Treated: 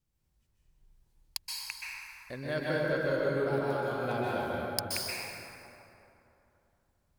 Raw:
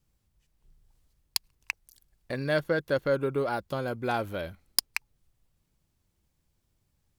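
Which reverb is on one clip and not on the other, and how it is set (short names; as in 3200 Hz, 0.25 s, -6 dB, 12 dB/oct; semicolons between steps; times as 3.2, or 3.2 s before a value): plate-style reverb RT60 3 s, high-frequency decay 0.5×, pre-delay 0.115 s, DRR -6 dB; gain -8.5 dB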